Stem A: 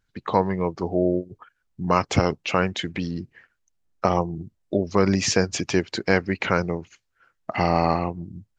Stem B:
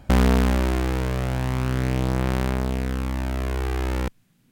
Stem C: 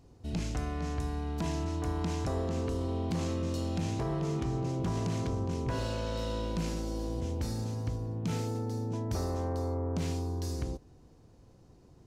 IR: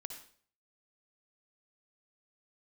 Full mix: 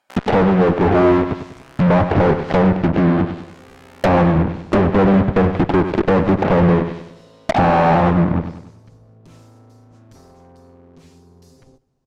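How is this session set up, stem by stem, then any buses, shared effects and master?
+2.0 dB, 0.00 s, no send, echo send -9.5 dB, Chebyshev low-pass 850 Hz, order 6; fuzz box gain 42 dB, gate -39 dBFS
-12.0 dB, 0.00 s, no send, no echo send, high-pass 760 Hz 12 dB/octave
-11.0 dB, 1.00 s, no send, echo send -23 dB, comb filter that takes the minimum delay 7.5 ms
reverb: none
echo: feedback delay 97 ms, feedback 43%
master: low-pass that closes with the level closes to 1.8 kHz, closed at -11.5 dBFS

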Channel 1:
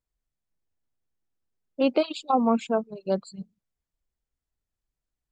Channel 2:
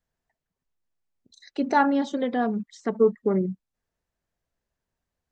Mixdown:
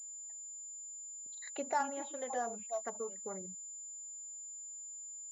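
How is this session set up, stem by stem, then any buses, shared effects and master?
-10.0 dB, 0.00 s, no send, tilt EQ -2 dB/octave; stepped vowel filter 3 Hz
+1.5 dB, 0.00 s, no send, compression 3:1, threshold -23 dBFS, peak gain reduction 7 dB; auto duck -11 dB, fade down 0.30 s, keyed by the first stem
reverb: none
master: resonant low shelf 460 Hz -11.5 dB, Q 1.5; class-D stage that switches slowly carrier 7.1 kHz

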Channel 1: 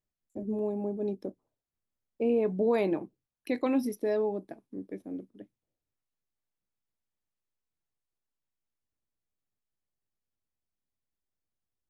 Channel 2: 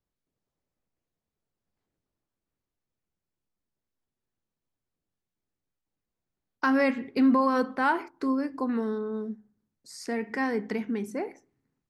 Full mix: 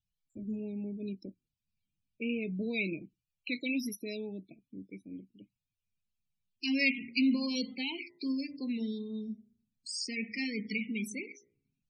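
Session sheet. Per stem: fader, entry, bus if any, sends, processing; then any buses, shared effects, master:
-1.5 dB, 0.00 s, no send, treble shelf 11 kHz -5 dB
-1.5 dB, 0.00 s, no send, de-hum 58.47 Hz, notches 35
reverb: none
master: FFT filter 190 Hz 0 dB, 1.5 kHz -28 dB, 2.3 kHz +12 dB; loudest bins only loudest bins 32; tape noise reduction on one side only decoder only

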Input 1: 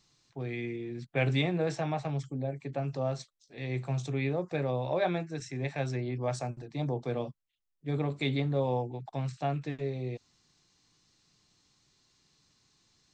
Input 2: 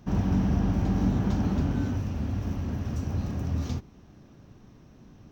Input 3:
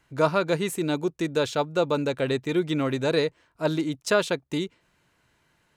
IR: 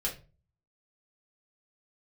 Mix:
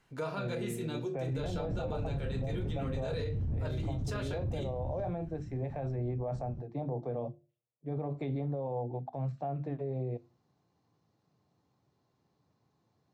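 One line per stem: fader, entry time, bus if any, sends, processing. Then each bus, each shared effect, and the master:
-12.5 dB, 0.00 s, bus A, send -20 dB, high-pass 88 Hz 24 dB/octave; peaking EQ 710 Hz +14.5 dB 1.9 oct; hum notches 50/100/150/200/250/300/350 Hz
-12.5 dB, 1.30 s, bus A, send -15.5 dB, peaking EQ 120 Hz +11.5 dB 0.77 oct; saturation -29 dBFS, distortion -6 dB
-3.5 dB, 0.00 s, no bus, send -7.5 dB, flange 0.46 Hz, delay 7.8 ms, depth 5.6 ms, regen +71%; auto duck -13 dB, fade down 0.20 s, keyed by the first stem
bus A: 0.0 dB, tilt EQ -4.5 dB/octave; peak limiter -23 dBFS, peak gain reduction 10.5 dB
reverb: on, RT60 0.35 s, pre-delay 4 ms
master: peak limiter -27.5 dBFS, peak gain reduction 11 dB

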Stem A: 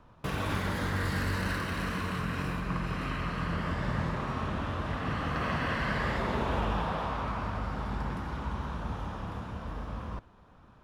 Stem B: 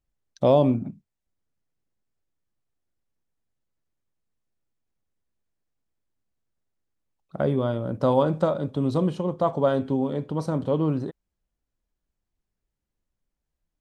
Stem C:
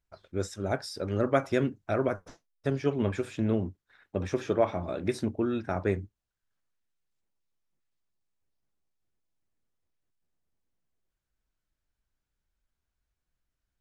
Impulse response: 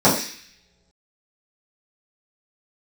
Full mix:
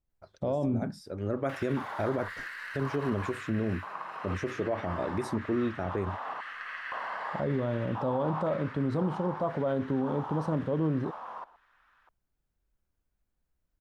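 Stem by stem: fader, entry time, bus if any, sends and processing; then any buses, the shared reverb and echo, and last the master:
+2.0 dB, 1.25 s, no send, band-stop 2.4 kHz, Q 26; compression, threshold -33 dBFS, peak gain reduction 7.5 dB; LFO high-pass square 0.97 Hz 830–1800 Hz
-1.5 dB, 0.00 s, no send, none
+1.5 dB, 0.10 s, no send, treble shelf 8.2 kHz +11.5 dB; auto duck -9 dB, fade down 0.70 s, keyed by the second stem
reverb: none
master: treble shelf 2.1 kHz -10.5 dB; peak limiter -20.5 dBFS, peak gain reduction 11 dB

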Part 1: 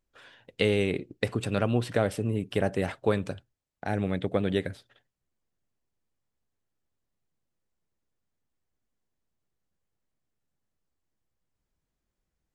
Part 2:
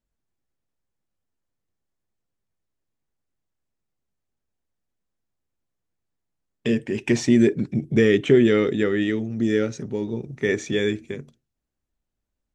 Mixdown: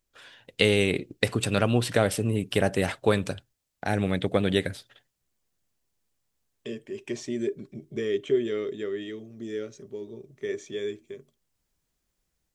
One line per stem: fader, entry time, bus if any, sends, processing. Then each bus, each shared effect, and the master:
-0.5 dB, 0.00 s, no send, level rider gain up to 3 dB
-18.0 dB, 0.00 s, no send, small resonant body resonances 400/600/1100/3200 Hz, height 12 dB, ringing for 45 ms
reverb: none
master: treble shelf 2.7 kHz +9 dB

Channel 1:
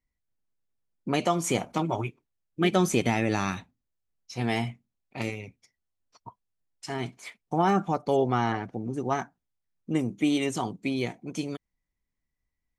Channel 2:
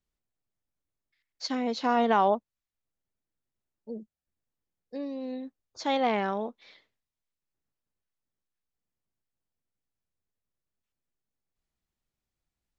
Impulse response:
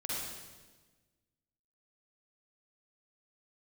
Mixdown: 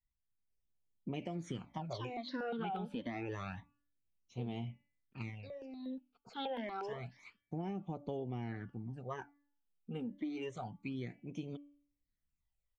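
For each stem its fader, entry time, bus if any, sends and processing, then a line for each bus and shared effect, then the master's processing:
-10.5 dB, 0.00 s, no send, low-pass 3.6 kHz 12 dB/octave; bass shelf 230 Hz +5 dB
-4.0 dB, 0.50 s, no send, hum notches 50/100/150/200/250 Hz; stepped phaser 8.4 Hz 940–5100 Hz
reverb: none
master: de-hum 287.8 Hz, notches 11; phase shifter stages 12, 0.28 Hz, lowest notch 100–1700 Hz; compression 12:1, threshold -36 dBFS, peak gain reduction 11 dB

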